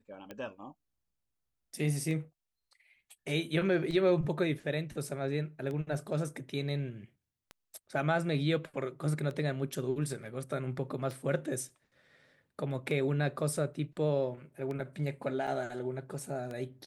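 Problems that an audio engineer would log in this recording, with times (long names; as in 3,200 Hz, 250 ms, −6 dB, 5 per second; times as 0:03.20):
scratch tick 33 1/3 rpm −28 dBFS
0:15.47–0:15.48: drop-out 6 ms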